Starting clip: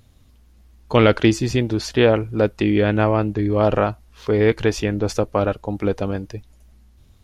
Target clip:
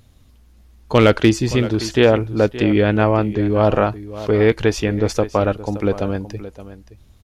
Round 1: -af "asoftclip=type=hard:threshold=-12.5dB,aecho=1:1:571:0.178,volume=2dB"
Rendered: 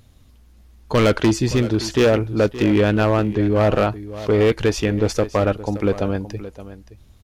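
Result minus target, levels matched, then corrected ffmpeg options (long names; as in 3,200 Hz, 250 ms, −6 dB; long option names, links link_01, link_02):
hard clipping: distortion +17 dB
-af "asoftclip=type=hard:threshold=-5dB,aecho=1:1:571:0.178,volume=2dB"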